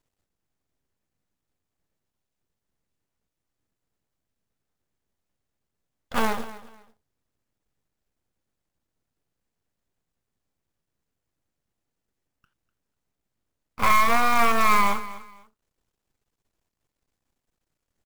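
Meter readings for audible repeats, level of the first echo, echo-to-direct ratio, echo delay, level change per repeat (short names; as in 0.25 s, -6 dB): 2, -16.5 dB, -16.0 dB, 0.248 s, -12.0 dB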